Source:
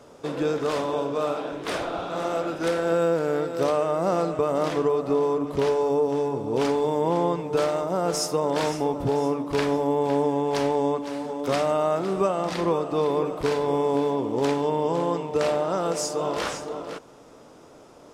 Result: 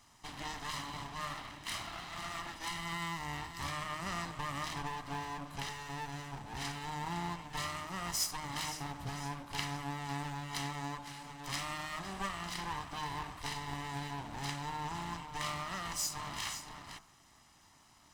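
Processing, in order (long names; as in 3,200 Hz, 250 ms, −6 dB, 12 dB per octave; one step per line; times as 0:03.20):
lower of the sound and its delayed copy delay 1 ms
guitar amp tone stack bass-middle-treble 5-5-5
hum removal 51.52 Hz, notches 31
level +2.5 dB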